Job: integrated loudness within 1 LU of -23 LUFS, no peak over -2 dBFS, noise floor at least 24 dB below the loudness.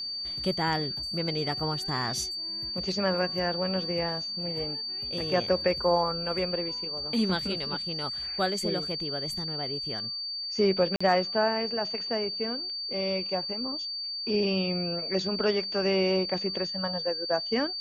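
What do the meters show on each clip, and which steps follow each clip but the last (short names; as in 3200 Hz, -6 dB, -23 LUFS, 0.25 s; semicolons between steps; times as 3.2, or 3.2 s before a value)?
dropouts 1; longest dropout 45 ms; steady tone 4600 Hz; tone level -32 dBFS; loudness -28.5 LUFS; peak -11.0 dBFS; loudness target -23.0 LUFS
-> interpolate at 10.96, 45 ms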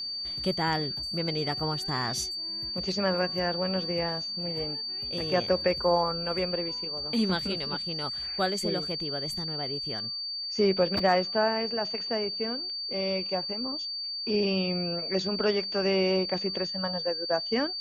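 dropouts 0; steady tone 4600 Hz; tone level -32 dBFS
-> notch 4600 Hz, Q 30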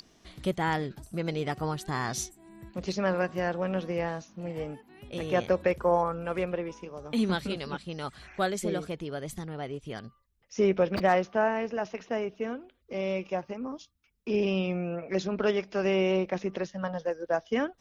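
steady tone none; loudness -30.5 LUFS; peak -11.5 dBFS; loudness target -23.0 LUFS
-> gain +7.5 dB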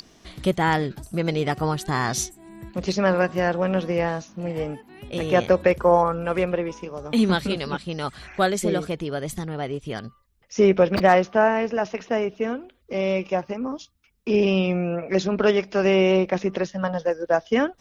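loudness -23.0 LUFS; peak -4.0 dBFS; noise floor -60 dBFS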